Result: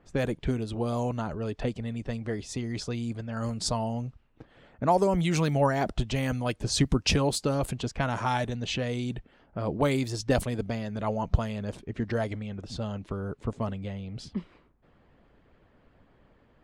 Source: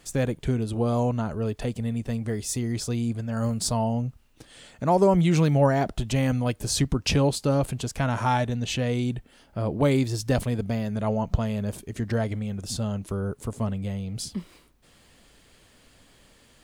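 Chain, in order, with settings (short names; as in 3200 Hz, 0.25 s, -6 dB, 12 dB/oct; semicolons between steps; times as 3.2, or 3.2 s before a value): low-pass opened by the level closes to 1300 Hz, open at -19.5 dBFS; harmonic-percussive split harmonic -7 dB; gain +1 dB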